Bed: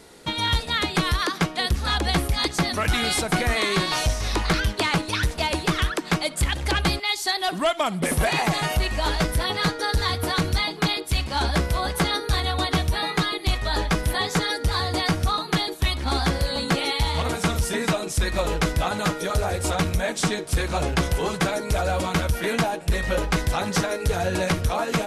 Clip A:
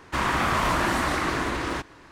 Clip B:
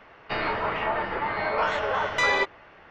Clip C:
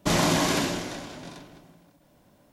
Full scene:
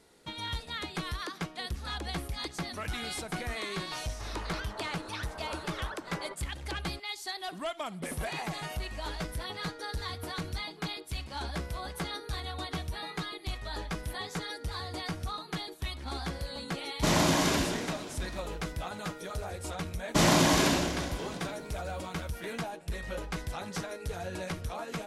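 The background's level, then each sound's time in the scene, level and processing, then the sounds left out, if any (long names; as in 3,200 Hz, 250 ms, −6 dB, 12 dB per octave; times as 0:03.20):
bed −13.5 dB
0:03.89: mix in B −17 dB + Butterworth low-pass 1,700 Hz
0:16.97: mix in C −3 dB
0:20.09: mix in C −0.5 dB
not used: A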